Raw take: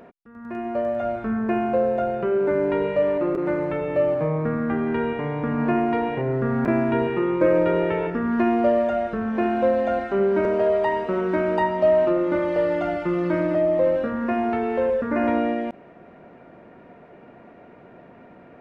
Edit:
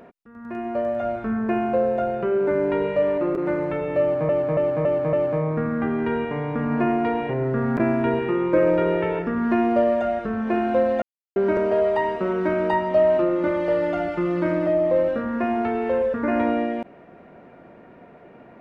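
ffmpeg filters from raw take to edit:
ffmpeg -i in.wav -filter_complex "[0:a]asplit=7[link_01][link_02][link_03][link_04][link_05][link_06][link_07];[link_01]atrim=end=4.292[link_08];[link_02]atrim=start=4.008:end=4.292[link_09];[link_03]atrim=start=4.008:end=4.292[link_10];[link_04]atrim=start=4.008:end=4.292[link_11];[link_05]atrim=start=4.008:end=9.9,asetpts=PTS-STARTPTS,afade=type=out:start_time=5.888:duration=0.004:curve=hsin[link_12];[link_06]atrim=start=9.9:end=10.24,asetpts=PTS-STARTPTS,volume=0[link_13];[link_07]atrim=start=10.24,asetpts=PTS-STARTPTS,afade=type=in:duration=0.004:curve=hsin[link_14];[link_08][link_09]acrossfade=duration=0.004:curve1=hsin:curve2=hsin[link_15];[link_15][link_10]acrossfade=duration=0.004:curve1=hsin:curve2=hsin[link_16];[link_16][link_11]acrossfade=duration=0.004:curve1=hsin:curve2=hsin[link_17];[link_12][link_13][link_14]concat=n=3:v=0:a=1[link_18];[link_17][link_18]acrossfade=duration=0.004:curve1=hsin:curve2=hsin" out.wav

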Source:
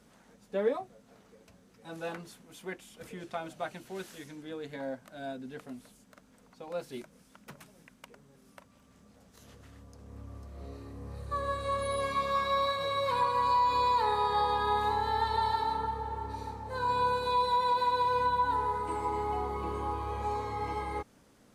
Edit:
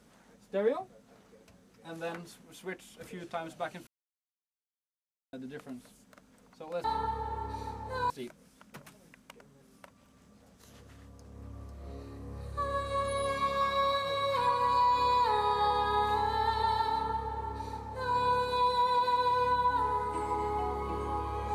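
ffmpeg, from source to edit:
ffmpeg -i in.wav -filter_complex "[0:a]asplit=5[link_01][link_02][link_03][link_04][link_05];[link_01]atrim=end=3.87,asetpts=PTS-STARTPTS,afade=type=out:start_time=3.866:duration=0.004:curve=hsin[link_06];[link_02]atrim=start=3.87:end=5.33,asetpts=PTS-STARTPTS,volume=0[link_07];[link_03]atrim=start=5.33:end=6.842,asetpts=PTS-STARTPTS,afade=type=in:duration=0.004:curve=hsin[link_08];[link_04]atrim=start=15.638:end=16.902[link_09];[link_05]atrim=start=6.838[link_10];[link_06][link_07][link_08]concat=n=3:v=0:a=1[link_11];[link_11][link_09]acrossfade=duration=0.004:curve1=hsin:curve2=hsin[link_12];[link_12][link_10]acrossfade=duration=0.004:curve1=hsin:curve2=hsin" out.wav

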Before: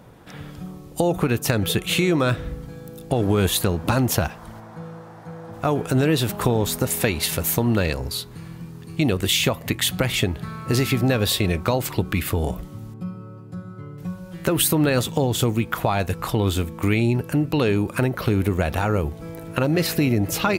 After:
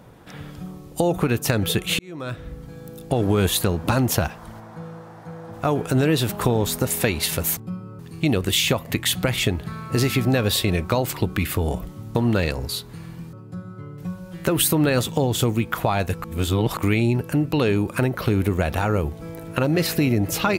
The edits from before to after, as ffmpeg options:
ffmpeg -i in.wav -filter_complex "[0:a]asplit=8[link_01][link_02][link_03][link_04][link_05][link_06][link_07][link_08];[link_01]atrim=end=1.99,asetpts=PTS-STARTPTS,afade=type=out:start_time=1.986:duration=0.004:curve=hsin[link_09];[link_02]atrim=start=1.99:end=7.572,asetpts=PTS-STARTPTS,afade=type=in:duration=0.89[link_10];[link_03]atrim=start=12.908:end=13.332[link_11];[link_04]atrim=start=8.748:end=12.912[link_12];[link_05]atrim=start=7.568:end=8.752[link_13];[link_06]atrim=start=13.328:end=16.242[link_14];[link_07]atrim=start=16.238:end=16.772,asetpts=PTS-STARTPTS,areverse[link_15];[link_08]atrim=start=16.768[link_16];[link_09][link_10]concat=n=2:v=0:a=1[link_17];[link_17][link_11]acrossfade=duration=0.004:curve1=hsin:curve2=hsin[link_18];[link_18][link_12]acrossfade=duration=0.004:curve1=hsin:curve2=hsin[link_19];[link_19][link_13]acrossfade=duration=0.004:curve1=hsin:curve2=hsin[link_20];[link_20][link_14]acrossfade=duration=0.004:curve1=hsin:curve2=hsin[link_21];[link_21][link_15]acrossfade=duration=0.004:curve1=hsin:curve2=hsin[link_22];[link_22][link_16]acrossfade=duration=0.004:curve1=hsin:curve2=hsin" out.wav

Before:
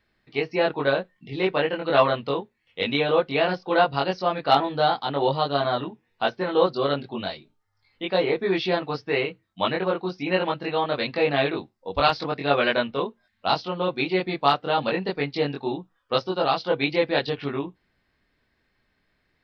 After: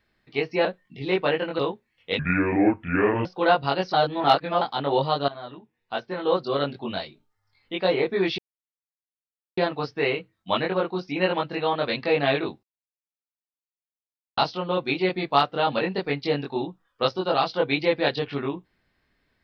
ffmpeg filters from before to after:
ffmpeg -i in.wav -filter_complex "[0:a]asplit=11[link_01][link_02][link_03][link_04][link_05][link_06][link_07][link_08][link_09][link_10][link_11];[link_01]atrim=end=0.652[link_12];[link_02]atrim=start=0.958:end=1.902[link_13];[link_03]atrim=start=2.278:end=2.884[link_14];[link_04]atrim=start=2.88:end=3.55,asetpts=PTS-STARTPTS,asetrate=27783,aresample=44100[link_15];[link_05]atrim=start=3.546:end=4.232[link_16];[link_06]atrim=start=4.228:end=4.912,asetpts=PTS-STARTPTS,areverse[link_17];[link_07]atrim=start=4.908:end=5.58,asetpts=PTS-STARTPTS,afade=type=out:start_time=0.668:duration=0.004:curve=hsin:silence=0.133352[link_18];[link_08]atrim=start=5.58:end=8.68,asetpts=PTS-STARTPTS,afade=type=in:duration=1.52:silence=0.133352,afade=type=out:start_time=3.096:duration=0.004:curve=hsin,apad=pad_dur=1.19[link_19];[link_09]atrim=start=8.68:end=11.74,asetpts=PTS-STARTPTS,afade=type=in:duration=0.004:curve=hsin,afade=type=out:start_time=3.056:duration=0.004:curve=hsin[link_20];[link_10]atrim=start=11.74:end=13.48,asetpts=PTS-STARTPTS,volume=0[link_21];[link_11]atrim=start=13.48,asetpts=PTS-STARTPTS,afade=type=in:duration=0.004:curve=hsin[link_22];[link_12][link_13]acrossfade=duration=0.004:curve1=hsin:curve2=hsin[link_23];[link_23][link_14]acrossfade=duration=0.004:curve1=hsin:curve2=hsin[link_24];[link_24][link_15]acrossfade=duration=0.004:curve1=hsin:curve2=hsin[link_25];[link_25][link_16]acrossfade=duration=0.004:curve1=hsin:curve2=hsin[link_26];[link_26][link_17]acrossfade=duration=0.004:curve1=hsin:curve2=hsin[link_27];[link_18][link_19][link_20][link_21][link_22]concat=n=5:v=0:a=1[link_28];[link_27][link_28]acrossfade=duration=0.004:curve1=hsin:curve2=hsin" out.wav

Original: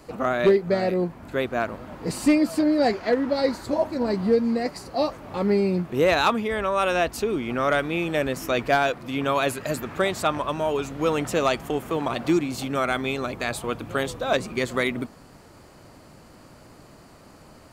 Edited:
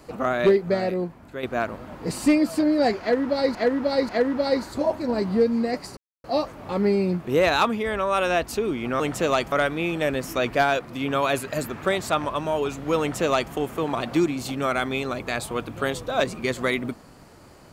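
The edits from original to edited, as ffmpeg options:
ffmpeg -i in.wav -filter_complex "[0:a]asplit=7[link_01][link_02][link_03][link_04][link_05][link_06][link_07];[link_01]atrim=end=1.43,asetpts=PTS-STARTPTS,afade=type=out:start_time=0.69:duration=0.74:silence=0.354813[link_08];[link_02]atrim=start=1.43:end=3.552,asetpts=PTS-STARTPTS,afade=type=in:duration=0.004:curve=hsin:silence=0.354813[link_09];[link_03]atrim=start=3.008:end=3.552[link_10];[link_04]atrim=start=3.008:end=4.89,asetpts=PTS-STARTPTS,afade=type=out:start_time=1.878:duration=0.004:curve=hsin,apad=pad_dur=0.27[link_11];[link_05]atrim=start=4.89:end=7.652,asetpts=PTS-STARTPTS,afade=type=in:duration=0.004:curve=hsin[link_12];[link_06]atrim=start=11.128:end=11.652[link_13];[link_07]atrim=start=7.648[link_14];[link_08][link_09]concat=n=2:v=0:a=1[link_15];[link_15][link_10]acrossfade=duration=0.004:curve1=hsin:curve2=hsin[link_16];[link_11][link_12]concat=n=2:v=0:a=1[link_17];[link_16][link_17]acrossfade=duration=0.004:curve1=hsin:curve2=hsin[link_18];[link_18][link_13]acrossfade=duration=0.004:curve1=hsin:curve2=hsin[link_19];[link_19][link_14]acrossfade=duration=0.004:curve1=hsin:curve2=hsin" out.wav

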